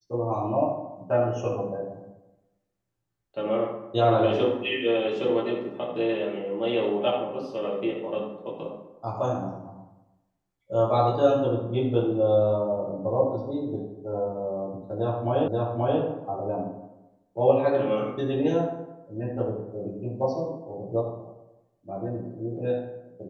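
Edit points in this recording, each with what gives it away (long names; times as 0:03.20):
0:15.48: the same again, the last 0.53 s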